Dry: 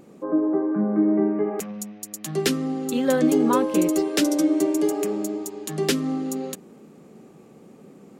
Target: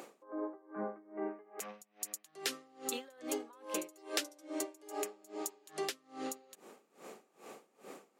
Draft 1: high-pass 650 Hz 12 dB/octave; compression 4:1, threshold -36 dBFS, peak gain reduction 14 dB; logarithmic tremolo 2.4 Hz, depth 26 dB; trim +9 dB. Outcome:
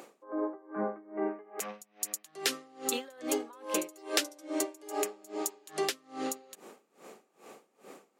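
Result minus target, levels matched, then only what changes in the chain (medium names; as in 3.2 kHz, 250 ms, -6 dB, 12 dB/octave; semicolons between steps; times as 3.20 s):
compression: peak gain reduction -6.5 dB
change: compression 4:1, threshold -44.5 dBFS, peak gain reduction 20.5 dB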